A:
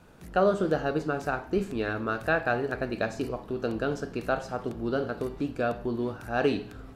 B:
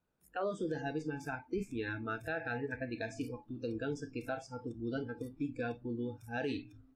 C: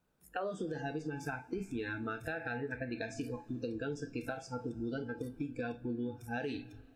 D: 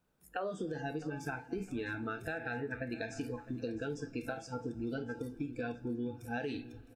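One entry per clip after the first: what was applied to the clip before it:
spectral noise reduction 23 dB; peak limiter -22 dBFS, peak gain reduction 8 dB; trim -5.5 dB
compression, threshold -40 dBFS, peak gain reduction 8.5 dB; reverberation, pre-delay 3 ms, DRR 12.5 dB; trim +5 dB
feedback delay 660 ms, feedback 37%, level -17 dB

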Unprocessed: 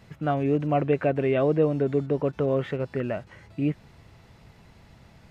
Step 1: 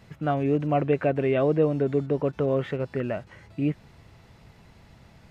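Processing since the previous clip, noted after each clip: no audible change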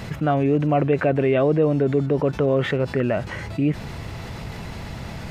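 level flattener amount 50%; trim +2 dB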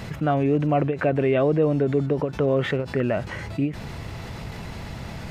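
endings held to a fixed fall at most 170 dB/s; trim -1.5 dB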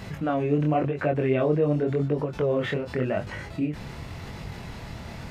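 chorus 0.91 Hz, delay 20 ms, depth 7.6 ms

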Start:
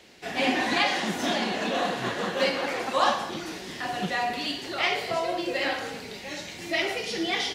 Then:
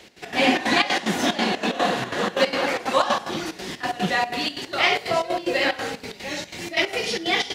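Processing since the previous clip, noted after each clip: trance gate "x.x.xxx.x" 184 bpm -12 dB; trim +6 dB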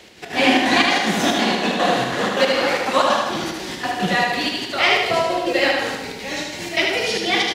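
feedback delay 78 ms, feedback 52%, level -3 dB; trim +2 dB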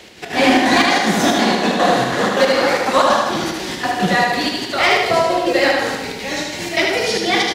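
dynamic bell 2.8 kHz, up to -6 dB, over -34 dBFS, Q 2.2; in parallel at -4 dB: wavefolder -11 dBFS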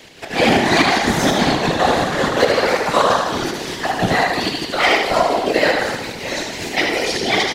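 whisper effect; trim -1 dB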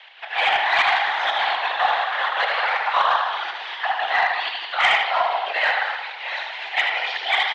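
Chebyshev band-pass 780–3400 Hz, order 3; saturation -6.5 dBFS, distortion -25 dB

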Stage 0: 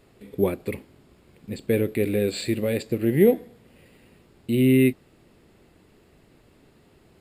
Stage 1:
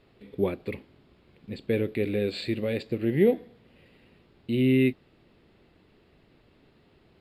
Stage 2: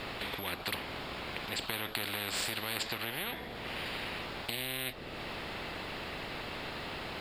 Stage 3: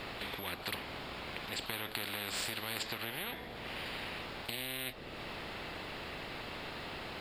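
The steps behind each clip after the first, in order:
resonant high shelf 5.5 kHz -11 dB, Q 1.5; trim -4 dB
compression 2:1, threshold -40 dBFS, peak gain reduction 13 dB; spectrum-flattening compressor 10:1; trim +6 dB
pre-echo 35 ms -15 dB; trim -3 dB

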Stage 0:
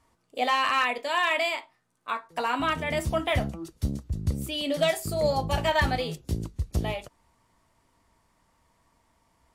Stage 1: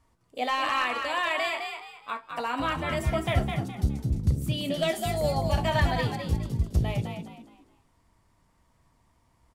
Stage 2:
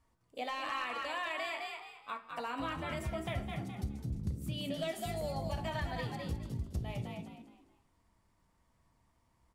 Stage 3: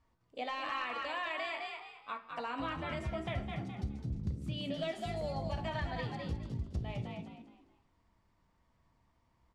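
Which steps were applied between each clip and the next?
bass shelf 150 Hz +8.5 dB; on a send: frequency-shifting echo 208 ms, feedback 31%, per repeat +54 Hz, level -5.5 dB; on the sum: trim -3.5 dB
compression 3:1, threshold -28 dBFS, peak gain reduction 8 dB; on a send at -9.5 dB: reverberation RT60 0.85 s, pre-delay 3 ms; on the sum: trim -7 dB
low-pass 5.2 kHz 12 dB/octave

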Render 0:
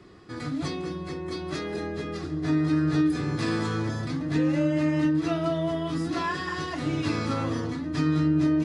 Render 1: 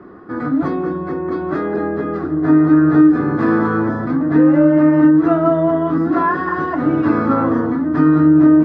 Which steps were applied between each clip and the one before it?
FFT filter 130 Hz 0 dB, 240 Hz +12 dB, 400 Hz +9 dB, 1.5 kHz +11 dB, 2.5 kHz -9 dB, 9.8 kHz -26 dB; trim +3 dB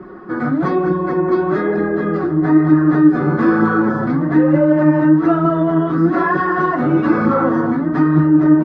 comb 5.4 ms, depth 56%; in parallel at +1 dB: peak limiter -12 dBFS, peak gain reduction 9.5 dB; on the sum: flange 1.1 Hz, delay 0.1 ms, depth 8.6 ms, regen +50%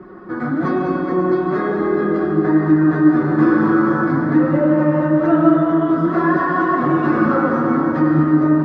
reverberation RT60 3.4 s, pre-delay 83 ms, DRR 1 dB; trim -3.5 dB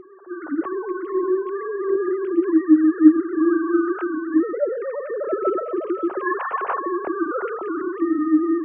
formants replaced by sine waves; trim -5.5 dB

